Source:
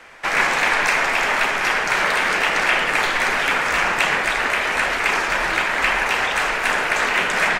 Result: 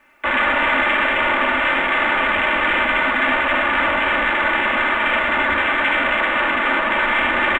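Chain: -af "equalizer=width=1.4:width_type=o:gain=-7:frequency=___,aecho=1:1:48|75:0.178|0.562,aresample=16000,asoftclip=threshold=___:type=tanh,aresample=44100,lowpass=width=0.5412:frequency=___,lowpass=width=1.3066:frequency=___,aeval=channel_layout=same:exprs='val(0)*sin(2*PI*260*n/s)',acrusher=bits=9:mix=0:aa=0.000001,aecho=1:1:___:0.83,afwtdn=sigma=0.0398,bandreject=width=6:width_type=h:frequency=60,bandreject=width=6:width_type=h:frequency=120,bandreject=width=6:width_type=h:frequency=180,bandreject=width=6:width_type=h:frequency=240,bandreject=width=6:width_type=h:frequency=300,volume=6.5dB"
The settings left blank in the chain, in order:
100, -19dB, 2.8k, 2.8k, 3.4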